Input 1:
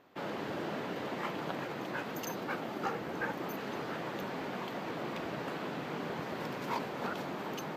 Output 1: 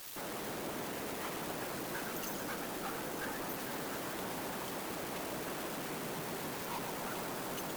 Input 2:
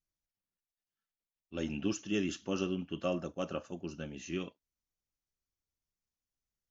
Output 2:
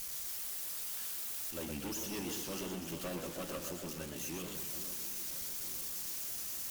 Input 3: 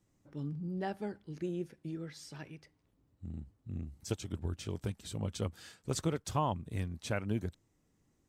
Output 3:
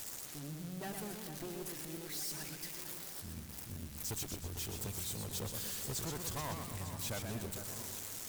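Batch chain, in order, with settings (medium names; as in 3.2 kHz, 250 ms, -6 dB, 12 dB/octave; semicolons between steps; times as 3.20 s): zero-crossing glitches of -26.5 dBFS; valve stage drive 37 dB, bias 0.45; harmonic-percussive split harmonic -5 dB; echo whose repeats swap between lows and highs 449 ms, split 1.8 kHz, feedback 69%, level -9.5 dB; modulated delay 121 ms, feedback 52%, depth 196 cents, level -6 dB; trim +1.5 dB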